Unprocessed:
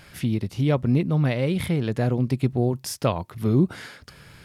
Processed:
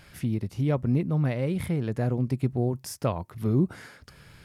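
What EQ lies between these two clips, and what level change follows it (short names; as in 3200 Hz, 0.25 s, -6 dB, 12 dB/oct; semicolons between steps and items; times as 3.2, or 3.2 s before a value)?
low shelf 75 Hz +5 dB; dynamic EQ 3500 Hz, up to -7 dB, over -51 dBFS, Q 1.3; -4.5 dB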